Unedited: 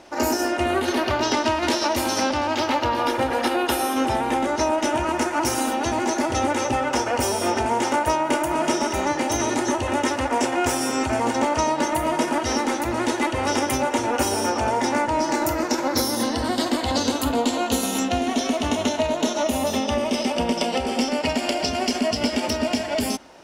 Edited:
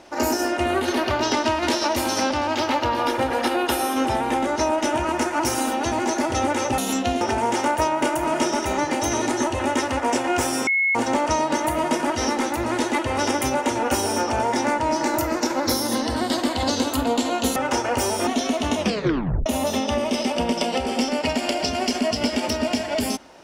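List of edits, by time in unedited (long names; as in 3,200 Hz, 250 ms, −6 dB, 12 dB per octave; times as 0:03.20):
0:06.78–0:07.49: swap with 0:17.84–0:18.27
0:10.95–0:11.23: beep over 2,180 Hz −17 dBFS
0:18.77: tape stop 0.69 s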